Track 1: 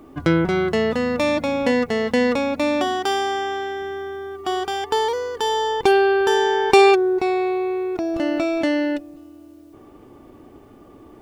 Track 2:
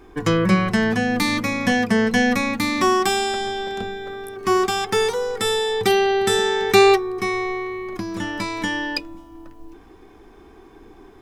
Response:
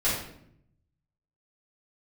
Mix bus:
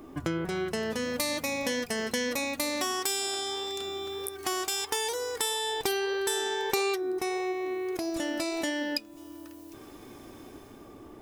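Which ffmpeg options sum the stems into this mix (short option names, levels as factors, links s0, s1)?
-filter_complex "[0:a]flanger=delay=2.7:depth=6.6:regen=86:speed=1.6:shape=sinusoidal,volume=1.26[s0];[1:a]aderivative,dynaudnorm=f=180:g=9:m=4.73,volume=-1,volume=0.75[s1];[s0][s1]amix=inputs=2:normalize=0,acompressor=threshold=0.0224:ratio=2.5"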